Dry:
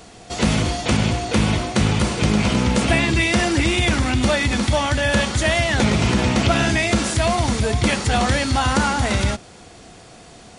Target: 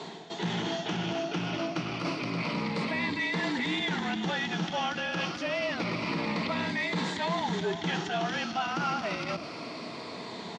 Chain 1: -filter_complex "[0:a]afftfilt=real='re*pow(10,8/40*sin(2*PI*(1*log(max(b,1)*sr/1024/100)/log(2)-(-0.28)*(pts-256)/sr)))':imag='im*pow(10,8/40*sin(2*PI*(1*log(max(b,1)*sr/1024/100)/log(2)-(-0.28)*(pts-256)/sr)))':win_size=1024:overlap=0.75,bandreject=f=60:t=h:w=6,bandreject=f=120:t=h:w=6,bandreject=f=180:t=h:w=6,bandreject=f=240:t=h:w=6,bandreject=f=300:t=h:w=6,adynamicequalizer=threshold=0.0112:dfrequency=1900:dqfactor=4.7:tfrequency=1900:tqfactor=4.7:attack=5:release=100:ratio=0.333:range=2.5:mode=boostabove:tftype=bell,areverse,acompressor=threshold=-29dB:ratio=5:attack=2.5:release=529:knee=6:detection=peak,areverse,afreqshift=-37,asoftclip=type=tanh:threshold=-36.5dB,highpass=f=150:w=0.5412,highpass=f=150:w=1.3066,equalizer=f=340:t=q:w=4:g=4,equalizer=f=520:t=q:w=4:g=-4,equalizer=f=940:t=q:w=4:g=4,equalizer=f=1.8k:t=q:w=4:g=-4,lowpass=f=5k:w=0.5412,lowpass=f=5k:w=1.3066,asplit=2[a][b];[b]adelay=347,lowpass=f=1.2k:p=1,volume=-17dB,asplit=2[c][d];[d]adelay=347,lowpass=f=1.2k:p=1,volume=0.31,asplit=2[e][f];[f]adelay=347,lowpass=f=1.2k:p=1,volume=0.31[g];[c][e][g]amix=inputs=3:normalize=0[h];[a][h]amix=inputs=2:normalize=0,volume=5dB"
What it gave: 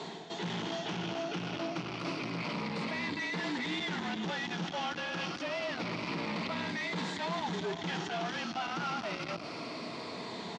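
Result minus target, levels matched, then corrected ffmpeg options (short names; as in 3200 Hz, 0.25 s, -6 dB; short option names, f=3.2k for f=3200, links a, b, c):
soft clip: distortion +10 dB
-filter_complex "[0:a]afftfilt=real='re*pow(10,8/40*sin(2*PI*(1*log(max(b,1)*sr/1024/100)/log(2)-(-0.28)*(pts-256)/sr)))':imag='im*pow(10,8/40*sin(2*PI*(1*log(max(b,1)*sr/1024/100)/log(2)-(-0.28)*(pts-256)/sr)))':win_size=1024:overlap=0.75,bandreject=f=60:t=h:w=6,bandreject=f=120:t=h:w=6,bandreject=f=180:t=h:w=6,bandreject=f=240:t=h:w=6,bandreject=f=300:t=h:w=6,adynamicequalizer=threshold=0.0112:dfrequency=1900:dqfactor=4.7:tfrequency=1900:tqfactor=4.7:attack=5:release=100:ratio=0.333:range=2.5:mode=boostabove:tftype=bell,areverse,acompressor=threshold=-29dB:ratio=5:attack=2.5:release=529:knee=6:detection=peak,areverse,afreqshift=-37,asoftclip=type=tanh:threshold=-26.5dB,highpass=f=150:w=0.5412,highpass=f=150:w=1.3066,equalizer=f=340:t=q:w=4:g=4,equalizer=f=520:t=q:w=4:g=-4,equalizer=f=940:t=q:w=4:g=4,equalizer=f=1.8k:t=q:w=4:g=-4,lowpass=f=5k:w=0.5412,lowpass=f=5k:w=1.3066,asplit=2[a][b];[b]adelay=347,lowpass=f=1.2k:p=1,volume=-17dB,asplit=2[c][d];[d]adelay=347,lowpass=f=1.2k:p=1,volume=0.31,asplit=2[e][f];[f]adelay=347,lowpass=f=1.2k:p=1,volume=0.31[g];[c][e][g]amix=inputs=3:normalize=0[h];[a][h]amix=inputs=2:normalize=0,volume=5dB"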